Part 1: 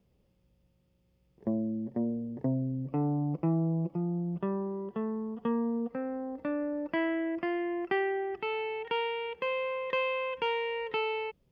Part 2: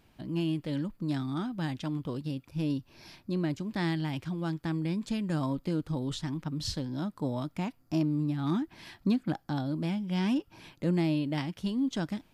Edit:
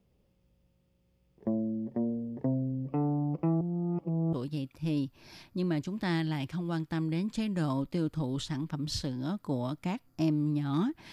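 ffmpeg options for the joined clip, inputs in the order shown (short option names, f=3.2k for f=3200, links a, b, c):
-filter_complex "[0:a]apad=whole_dur=11.12,atrim=end=11.12,asplit=2[a][b];[a]atrim=end=3.612[c];[b]atrim=start=3.608:end=4.332,asetpts=PTS-STARTPTS,areverse[d];[1:a]atrim=start=2.058:end=8.85[e];[c][d]acrossfade=d=0.004:c1=hsin:c2=hsin[f];[f][e]acrossfade=d=0.004:c1=hsin:c2=hsin"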